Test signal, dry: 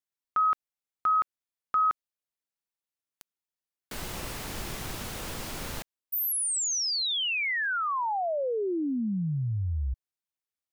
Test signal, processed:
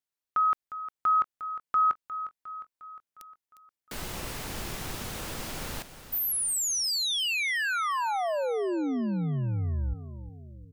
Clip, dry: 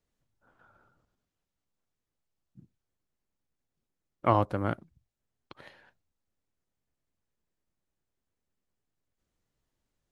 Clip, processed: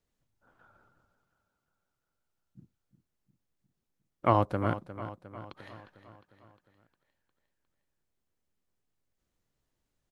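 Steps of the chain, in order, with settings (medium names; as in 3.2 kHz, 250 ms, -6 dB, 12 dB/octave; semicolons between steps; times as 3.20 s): feedback delay 356 ms, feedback 56%, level -13 dB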